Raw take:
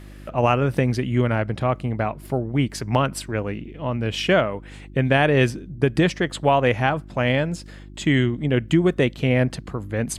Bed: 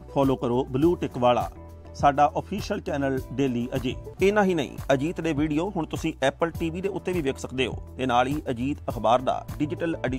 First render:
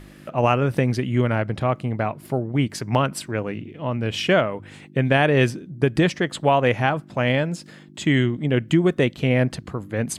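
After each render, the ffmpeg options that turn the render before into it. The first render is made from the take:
-af "bandreject=f=50:t=h:w=4,bandreject=f=100:t=h:w=4"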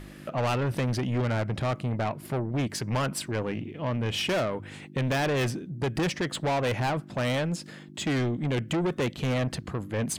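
-af "asoftclip=type=tanh:threshold=-23.5dB"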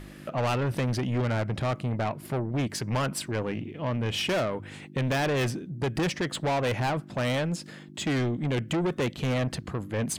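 -af anull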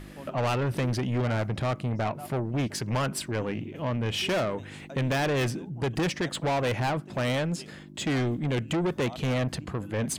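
-filter_complex "[1:a]volume=-23dB[a];[0:a][a]amix=inputs=2:normalize=0"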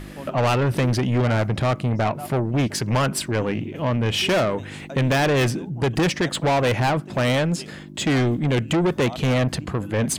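-af "volume=7dB"

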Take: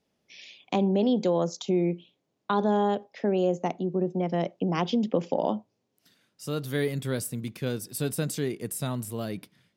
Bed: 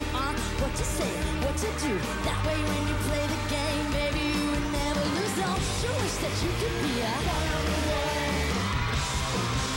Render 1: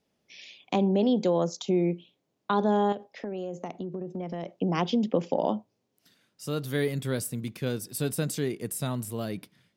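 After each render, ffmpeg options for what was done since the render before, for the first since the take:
-filter_complex "[0:a]asettb=1/sr,asplit=3[a][b][c];[a]atrim=end=2.924[d];[b]atrim=start=2.92:end=4.48,asetpts=PTS-STARTPTS,afade=t=in:d=0.004:c=qsin,afade=t=out:st=1.556:d=0.004:c=qsin,acompressor=threshold=-30dB:ratio=12:attack=3.2:release=140:knee=1:detection=peak[e];[c]atrim=start=4.476[f];[d][e]acrossfade=d=0.004:c1=hsin:c2=qsin[g];[g][f]acrossfade=d=0.004:c1=qsin:c2=hsin"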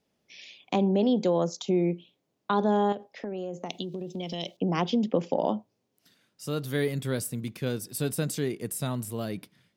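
-filter_complex "[0:a]asettb=1/sr,asplit=3[a][b][c];[a]atrim=end=3.694[d];[b]atrim=start=3.69:end=4.57,asetpts=PTS-STARTPTS,afade=t=in:d=0.004:c=qsin,afade=t=out:st=0.876:d=0.004:c=qsin,highshelf=f=2.3k:t=q:w=3:g=14[e];[c]atrim=start=4.566[f];[d][e]acrossfade=d=0.004:c1=hsin:c2=qsin[g];[g][f]acrossfade=d=0.004:c1=qsin:c2=hsin"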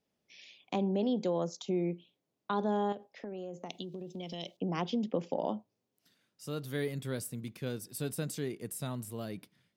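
-af "volume=-7dB"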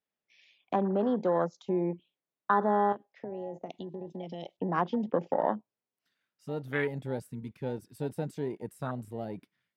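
-af "afwtdn=0.0112,equalizer=f=1.6k:t=o:w=2.6:g=12.5"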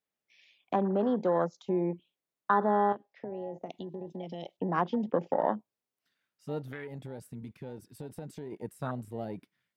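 -filter_complex "[0:a]asettb=1/sr,asplit=3[a][b][c];[a]atrim=end=2.524[d];[b]atrim=start=2.52:end=3.58,asetpts=PTS-STARTPTS,afade=t=in:d=0.004:c=qsin,afade=t=out:st=1.056:d=0.004:c=qsin,lowpass=f=5.7k:w=0.5412,lowpass=f=5.7k:w=1.3066[e];[c]atrim=start=3.576[f];[d][e]acrossfade=d=0.004:c1=hsin:c2=qsin[g];[g][f]acrossfade=d=0.004:c1=qsin:c2=hsin,asettb=1/sr,asplit=3[h][i][j];[h]atrim=end=6.614[k];[i]atrim=start=6.61:end=8.52,asetpts=PTS-STARTPTS,afade=t=in:d=0.004:c=qsin,afade=t=out:st=1.906:d=0.004:c=qsin,acompressor=threshold=-37dB:ratio=6:attack=3.2:release=140:knee=1:detection=peak[l];[j]atrim=start=8.516[m];[k][l]acrossfade=d=0.004:c1=hsin:c2=qsin[n];[n][m]acrossfade=d=0.004:c1=qsin:c2=hsin"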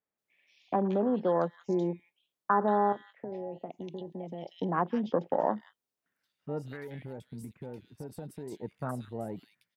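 -filter_complex "[0:a]acrossover=split=2300[a][b];[b]adelay=180[c];[a][c]amix=inputs=2:normalize=0"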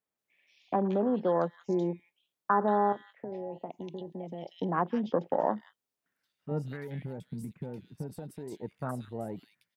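-filter_complex "[0:a]asettb=1/sr,asplit=3[a][b][c];[a]atrim=end=3.504[d];[b]atrim=start=3.5:end=3.94,asetpts=PTS-STARTPTS,afade=t=in:d=0.004:c=qsin,afade=t=out:st=0.436:d=0.004:c=qsin,equalizer=f=950:w=5:g=9.5[e];[c]atrim=start=3.936[f];[d][e]acrossfade=d=0.004:c1=hsin:c2=qsin[g];[g][f]acrossfade=d=0.004:c1=qsin:c2=hsin,asettb=1/sr,asplit=3[h][i][j];[h]atrim=end=6.514[k];[i]atrim=start=6.51:end=8.16,asetpts=PTS-STARTPTS,afade=t=in:d=0.004:c=qsin,afade=t=out:st=1.646:d=0.004:c=qsin,equalizer=f=170:t=o:w=0.77:g=9[l];[j]atrim=start=8.156[m];[k][l]acrossfade=d=0.004:c1=hsin:c2=qsin[n];[n][m]acrossfade=d=0.004:c1=qsin:c2=hsin"

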